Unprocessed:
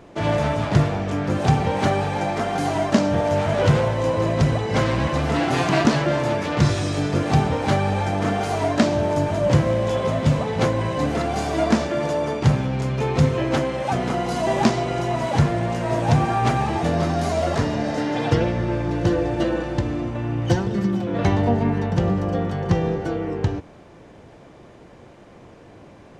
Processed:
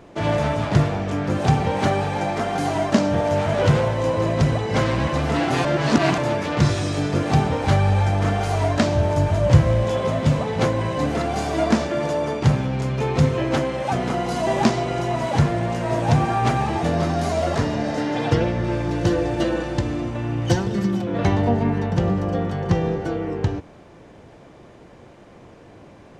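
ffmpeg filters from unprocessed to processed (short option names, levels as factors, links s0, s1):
-filter_complex "[0:a]asplit=3[s0][s1][s2];[s0]afade=t=out:st=7.64:d=0.02[s3];[s1]asubboost=boost=4.5:cutoff=100,afade=t=in:st=7.64:d=0.02,afade=t=out:st=9.83:d=0.02[s4];[s2]afade=t=in:st=9.83:d=0.02[s5];[s3][s4][s5]amix=inputs=3:normalize=0,asettb=1/sr,asplit=3[s6][s7][s8];[s6]atrim=end=18.644[s9];[s7]atrim=start=18.64:end=21.02,asetpts=PTS-STARTPTS,afade=t=in:d=0.004:c=qsin,afade=t=out:st=2.376:d=0.004:c=qsin,highshelf=f=3600:g=6[s10];[s8]atrim=start=21.016[s11];[s9][s10]acrossfade=d=0.004:c1=hsin:c2=qsin[s12];[s12][s11]acrossfade=d=0.004:c1=qsin:c2=hsin,asplit=3[s13][s14][s15];[s13]atrim=end=5.652[s16];[s14]atrim=start=5.648:end=6.182,asetpts=PTS-STARTPTS,areverse[s17];[s15]atrim=start=6.178[s18];[s16][s17]acrossfade=d=0.004:c1=hsin:c2=hsin[s19];[s19][s18]acrossfade=d=0.004:c1=hsin:c2=hsin"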